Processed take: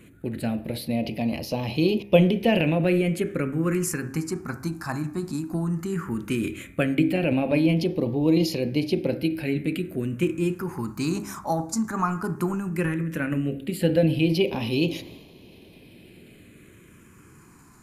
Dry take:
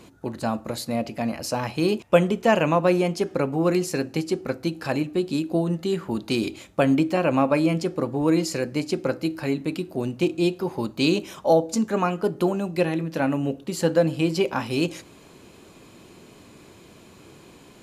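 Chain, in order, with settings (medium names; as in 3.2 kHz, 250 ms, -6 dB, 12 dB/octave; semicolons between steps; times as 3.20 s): transient shaper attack +3 dB, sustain +7 dB; de-hum 67.5 Hz, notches 37; phase shifter stages 4, 0.15 Hz, lowest notch 500–1400 Hz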